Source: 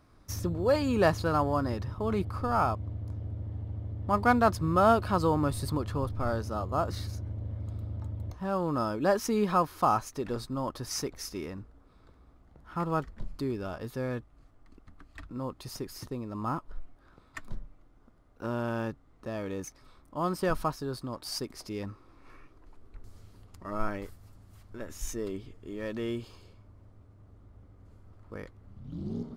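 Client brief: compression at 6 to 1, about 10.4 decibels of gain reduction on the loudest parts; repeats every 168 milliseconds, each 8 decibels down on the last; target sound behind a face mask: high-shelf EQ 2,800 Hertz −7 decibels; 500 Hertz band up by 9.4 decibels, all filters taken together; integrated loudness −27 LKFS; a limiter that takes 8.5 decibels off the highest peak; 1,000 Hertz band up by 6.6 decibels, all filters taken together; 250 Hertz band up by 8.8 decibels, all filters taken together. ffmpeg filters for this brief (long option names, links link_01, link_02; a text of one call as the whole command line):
ffmpeg -i in.wav -af "equalizer=frequency=250:width_type=o:gain=8.5,equalizer=frequency=500:width_type=o:gain=8,equalizer=frequency=1000:width_type=o:gain=6.5,acompressor=threshold=-21dB:ratio=6,alimiter=limit=-17dB:level=0:latency=1,highshelf=frequency=2800:gain=-7,aecho=1:1:168|336|504|672|840:0.398|0.159|0.0637|0.0255|0.0102,volume=2.5dB" out.wav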